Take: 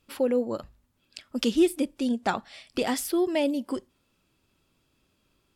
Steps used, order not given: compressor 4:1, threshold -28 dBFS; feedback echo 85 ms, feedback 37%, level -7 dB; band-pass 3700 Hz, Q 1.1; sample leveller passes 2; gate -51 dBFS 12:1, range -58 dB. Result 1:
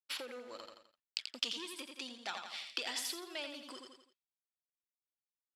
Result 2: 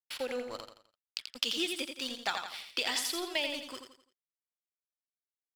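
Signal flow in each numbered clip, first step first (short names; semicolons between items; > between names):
sample leveller > gate > feedback echo > compressor > band-pass; band-pass > sample leveller > gate > feedback echo > compressor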